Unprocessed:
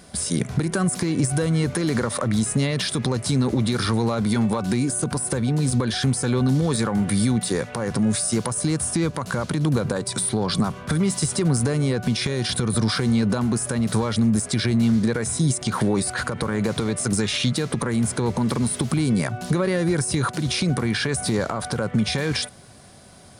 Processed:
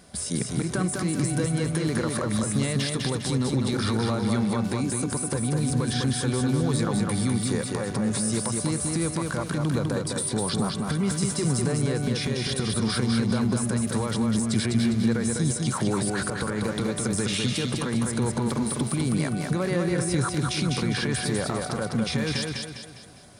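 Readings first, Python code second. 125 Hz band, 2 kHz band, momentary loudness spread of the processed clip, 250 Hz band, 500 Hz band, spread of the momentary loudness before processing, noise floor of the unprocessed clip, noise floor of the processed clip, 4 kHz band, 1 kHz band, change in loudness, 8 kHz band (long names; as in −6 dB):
−3.5 dB, −3.0 dB, 3 LU, −3.0 dB, −3.0 dB, 4 LU, −39 dBFS, −34 dBFS, −3.0 dB, −3.0 dB, −3.0 dB, −3.0 dB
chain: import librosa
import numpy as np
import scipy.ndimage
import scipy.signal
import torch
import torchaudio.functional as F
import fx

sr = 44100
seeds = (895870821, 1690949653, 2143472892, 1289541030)

y = fx.echo_feedback(x, sr, ms=202, feedback_pct=43, wet_db=-3.5)
y = F.gain(torch.from_numpy(y), -5.0).numpy()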